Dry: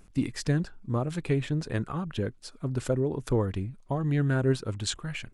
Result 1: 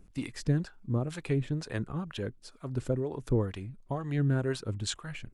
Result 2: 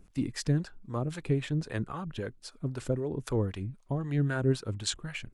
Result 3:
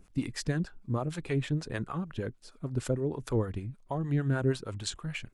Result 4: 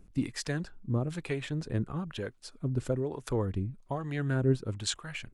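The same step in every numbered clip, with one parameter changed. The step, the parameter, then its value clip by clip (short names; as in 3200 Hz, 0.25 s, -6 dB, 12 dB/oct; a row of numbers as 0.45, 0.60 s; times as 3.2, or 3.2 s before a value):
harmonic tremolo, rate: 2.1, 3.8, 6.5, 1.1 Hz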